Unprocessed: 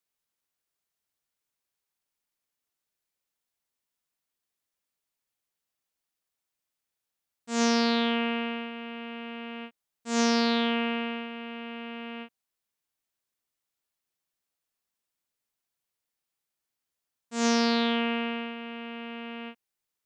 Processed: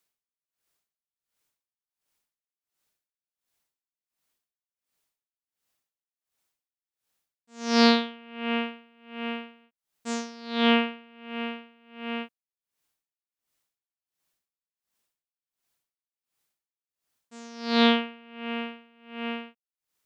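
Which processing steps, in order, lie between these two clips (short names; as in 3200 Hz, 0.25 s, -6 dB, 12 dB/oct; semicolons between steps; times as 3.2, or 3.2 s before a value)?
dB-linear tremolo 1.4 Hz, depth 29 dB; gain +8 dB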